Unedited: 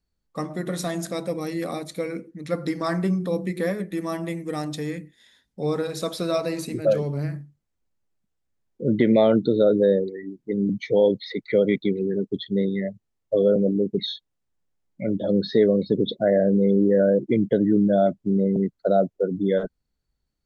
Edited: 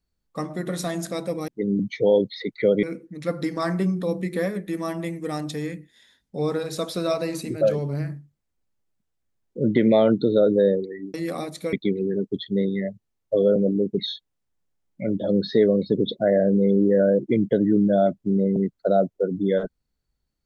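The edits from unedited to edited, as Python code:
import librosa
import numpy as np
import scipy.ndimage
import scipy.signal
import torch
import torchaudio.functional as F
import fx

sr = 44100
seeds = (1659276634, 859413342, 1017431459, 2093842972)

y = fx.edit(x, sr, fx.swap(start_s=1.48, length_s=0.59, other_s=10.38, other_length_s=1.35), tone=tone)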